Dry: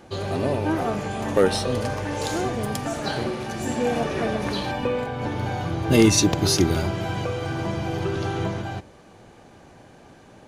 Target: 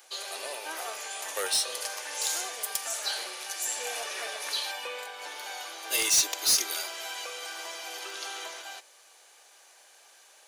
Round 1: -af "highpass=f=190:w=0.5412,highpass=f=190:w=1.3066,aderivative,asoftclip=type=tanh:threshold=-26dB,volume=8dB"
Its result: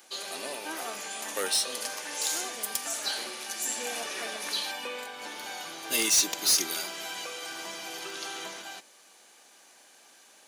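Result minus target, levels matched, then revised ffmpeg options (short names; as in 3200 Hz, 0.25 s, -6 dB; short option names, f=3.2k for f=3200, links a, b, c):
250 Hz band +9.5 dB
-af "highpass=f=420:w=0.5412,highpass=f=420:w=1.3066,aderivative,asoftclip=type=tanh:threshold=-26dB,volume=8dB"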